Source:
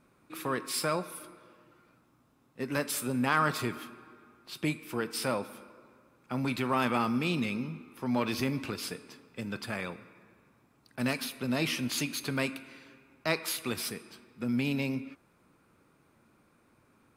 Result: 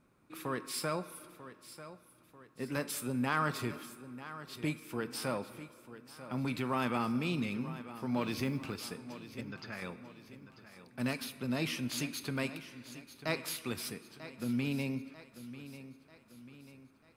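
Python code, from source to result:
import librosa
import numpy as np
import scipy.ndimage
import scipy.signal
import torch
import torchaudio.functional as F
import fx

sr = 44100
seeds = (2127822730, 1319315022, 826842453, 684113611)

y = fx.low_shelf(x, sr, hz=240.0, db=4.0)
y = fx.quant_companded(y, sr, bits=8, at=(8.21, 8.81))
y = fx.cheby_ripple(y, sr, hz=6700.0, ripple_db=6, at=(9.41, 9.82))
y = fx.echo_feedback(y, sr, ms=942, feedback_pct=48, wet_db=-14.0)
y = y * 10.0 ** (-5.5 / 20.0)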